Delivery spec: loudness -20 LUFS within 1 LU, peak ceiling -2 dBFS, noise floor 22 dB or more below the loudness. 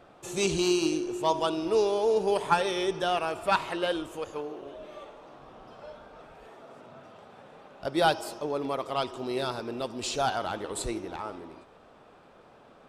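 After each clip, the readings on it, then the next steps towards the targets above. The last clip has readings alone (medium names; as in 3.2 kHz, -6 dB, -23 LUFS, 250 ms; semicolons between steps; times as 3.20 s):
loudness -29.0 LUFS; peak level -9.5 dBFS; loudness target -20.0 LUFS
-> trim +9 dB; peak limiter -2 dBFS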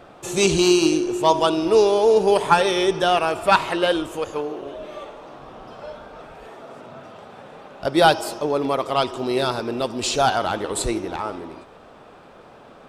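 loudness -20.0 LUFS; peak level -2.0 dBFS; noise floor -46 dBFS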